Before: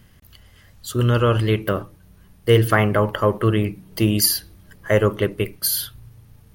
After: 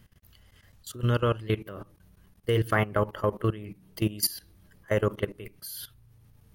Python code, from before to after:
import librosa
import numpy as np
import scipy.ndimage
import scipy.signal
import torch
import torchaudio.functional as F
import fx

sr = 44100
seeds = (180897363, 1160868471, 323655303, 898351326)

y = fx.level_steps(x, sr, step_db=17)
y = y * librosa.db_to_amplitude(-5.5)